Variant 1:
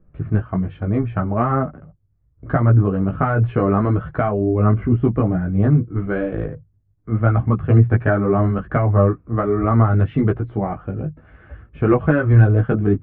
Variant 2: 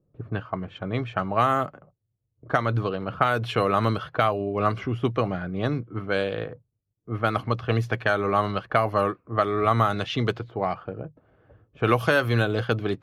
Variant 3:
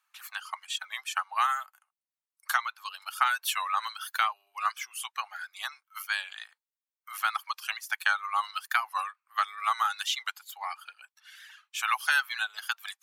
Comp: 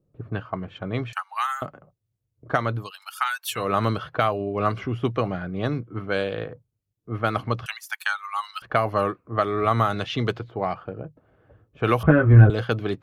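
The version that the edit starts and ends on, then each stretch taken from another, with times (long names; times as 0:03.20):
2
0:01.13–0:01.62: punch in from 3
0:02.79–0:03.61: punch in from 3, crossfade 0.24 s
0:07.66–0:08.62: punch in from 3
0:12.03–0:12.50: punch in from 1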